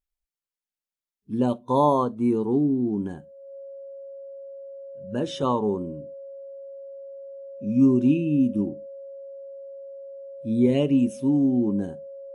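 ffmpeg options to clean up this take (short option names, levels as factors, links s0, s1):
-af "bandreject=f=550:w=30"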